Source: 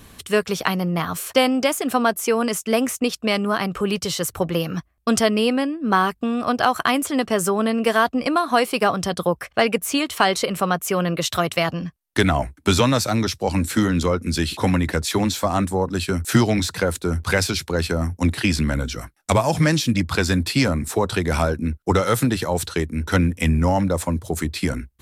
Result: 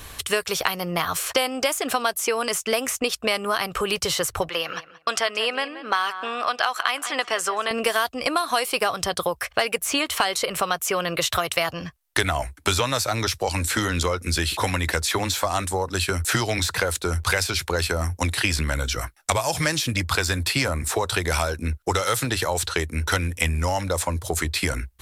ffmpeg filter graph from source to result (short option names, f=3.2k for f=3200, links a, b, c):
-filter_complex "[0:a]asettb=1/sr,asplit=3[a][b][c];[a]atrim=end=4.494[d];[b]atrim=start=4.49:end=7.71,asetpts=PTS-STARTPTS,afade=t=in:d=0.004:c=qsin,afade=t=out:st=3.216:d=0.004:c=qsin,bandpass=f=2k:t=q:w=0.51,asplit=2[e][f];[f]adelay=178,lowpass=f=3.1k:p=1,volume=-16dB,asplit=2[g][h];[h]adelay=178,lowpass=f=3.1k:p=1,volume=0.21[i];[e][g][i]amix=inputs=3:normalize=0,atrim=end_sample=142002[j];[c]atrim=start=7.706[k];[d][j]acrossfade=d=0.004:c1=hsin:c2=qsin[l];[l][k]acrossfade=d=0.004:c1=qsin:c2=hsin,equalizer=f=210:t=o:w=1.5:g=-14.5,acrossover=split=2700|7900[m][n][o];[m]acompressor=threshold=-30dB:ratio=4[p];[n]acompressor=threshold=-37dB:ratio=4[q];[o]acompressor=threshold=-40dB:ratio=4[r];[p][q][r]amix=inputs=3:normalize=0,volume=8dB"